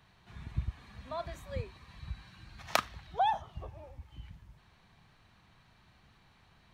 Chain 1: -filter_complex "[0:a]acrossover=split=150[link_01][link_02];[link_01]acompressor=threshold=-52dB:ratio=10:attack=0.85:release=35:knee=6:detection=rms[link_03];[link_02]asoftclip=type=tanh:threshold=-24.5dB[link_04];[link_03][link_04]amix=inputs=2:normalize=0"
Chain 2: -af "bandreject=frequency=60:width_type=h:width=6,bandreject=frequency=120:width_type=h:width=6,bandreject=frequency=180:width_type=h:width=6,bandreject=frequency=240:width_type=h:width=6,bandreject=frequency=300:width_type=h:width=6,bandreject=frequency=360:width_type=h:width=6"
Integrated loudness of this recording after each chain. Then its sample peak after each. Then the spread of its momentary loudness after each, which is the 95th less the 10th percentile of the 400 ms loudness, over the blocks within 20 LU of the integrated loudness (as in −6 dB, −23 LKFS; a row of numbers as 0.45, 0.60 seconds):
−40.5, −37.0 LKFS; −24.0, −8.0 dBFS; 22, 21 LU